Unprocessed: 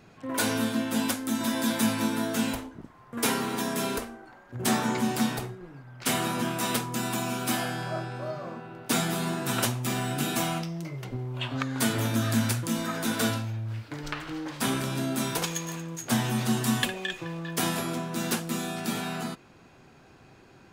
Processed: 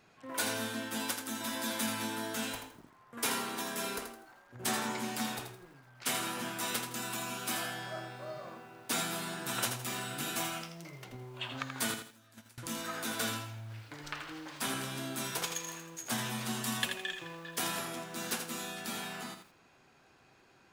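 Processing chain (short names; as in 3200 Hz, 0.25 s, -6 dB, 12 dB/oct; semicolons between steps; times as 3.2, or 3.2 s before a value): 11.94–12.58 gate -19 dBFS, range -25 dB; low shelf 440 Hz -10 dB; lo-fi delay 82 ms, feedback 35%, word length 9-bit, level -7 dB; gain -5 dB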